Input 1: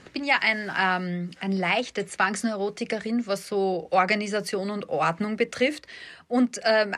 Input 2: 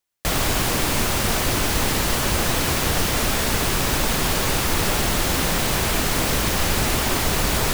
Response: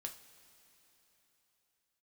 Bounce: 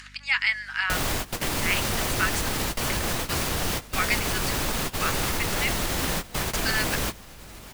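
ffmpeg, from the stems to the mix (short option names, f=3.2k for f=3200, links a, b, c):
-filter_complex "[0:a]highpass=f=1.3k:w=0.5412,highpass=f=1.3k:w=1.3066,volume=-0.5dB,asplit=2[a][b];[1:a]alimiter=limit=-16.5dB:level=0:latency=1:release=172,adelay=650,volume=-0.5dB,asplit=2[c][d];[d]volume=-21.5dB[e];[b]apad=whole_len=369987[f];[c][f]sidechaingate=range=-24dB:threshold=-49dB:ratio=16:detection=peak[g];[2:a]atrim=start_sample=2205[h];[e][h]afir=irnorm=-1:irlink=0[i];[a][g][i]amix=inputs=3:normalize=0,acompressor=mode=upward:threshold=-38dB:ratio=2.5,aeval=exprs='val(0)+0.00316*(sin(2*PI*50*n/s)+sin(2*PI*2*50*n/s)/2+sin(2*PI*3*50*n/s)/3+sin(2*PI*4*50*n/s)/4+sin(2*PI*5*50*n/s)/5)':c=same"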